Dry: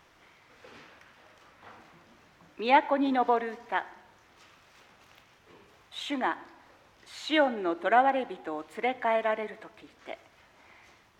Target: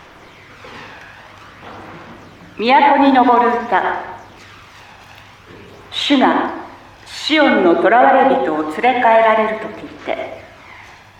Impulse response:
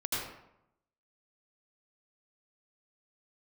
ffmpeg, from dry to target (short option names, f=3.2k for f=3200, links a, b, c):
-filter_complex "[0:a]aphaser=in_gain=1:out_gain=1:delay=1.2:decay=0.39:speed=0.5:type=sinusoidal,asplit=2[a][b];[1:a]atrim=start_sample=2205,lowpass=5.8k[c];[b][c]afir=irnorm=-1:irlink=0,volume=-7.5dB[d];[a][d]amix=inputs=2:normalize=0,alimiter=level_in=14.5dB:limit=-1dB:release=50:level=0:latency=1,volume=-1dB"